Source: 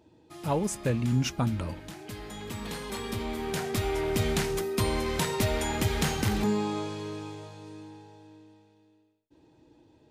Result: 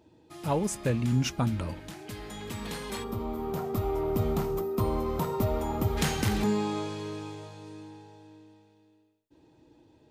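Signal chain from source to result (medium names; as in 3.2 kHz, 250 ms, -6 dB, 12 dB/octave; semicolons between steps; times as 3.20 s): time-frequency box 3.04–5.97 s, 1.4–12 kHz -14 dB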